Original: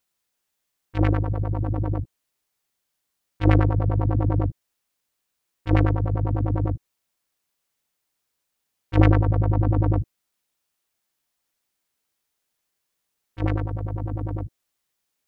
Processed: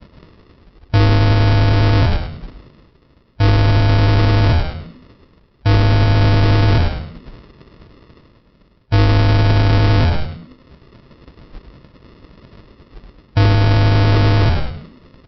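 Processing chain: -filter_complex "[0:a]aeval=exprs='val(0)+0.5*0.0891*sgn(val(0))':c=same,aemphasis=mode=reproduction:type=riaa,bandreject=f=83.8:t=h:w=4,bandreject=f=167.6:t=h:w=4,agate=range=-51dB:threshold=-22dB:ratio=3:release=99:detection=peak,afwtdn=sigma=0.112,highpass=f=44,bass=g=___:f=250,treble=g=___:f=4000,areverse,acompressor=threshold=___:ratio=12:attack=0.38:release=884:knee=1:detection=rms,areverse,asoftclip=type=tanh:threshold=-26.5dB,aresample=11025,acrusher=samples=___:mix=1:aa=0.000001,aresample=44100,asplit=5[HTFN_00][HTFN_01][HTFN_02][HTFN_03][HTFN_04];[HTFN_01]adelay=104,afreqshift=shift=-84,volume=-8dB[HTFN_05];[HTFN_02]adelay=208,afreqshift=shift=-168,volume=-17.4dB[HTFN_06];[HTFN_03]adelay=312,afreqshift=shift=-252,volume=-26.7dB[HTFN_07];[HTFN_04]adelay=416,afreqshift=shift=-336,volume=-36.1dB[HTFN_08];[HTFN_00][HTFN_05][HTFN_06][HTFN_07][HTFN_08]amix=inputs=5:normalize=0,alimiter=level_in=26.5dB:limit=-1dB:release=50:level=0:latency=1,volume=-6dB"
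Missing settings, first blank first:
-3, 2, -14dB, 14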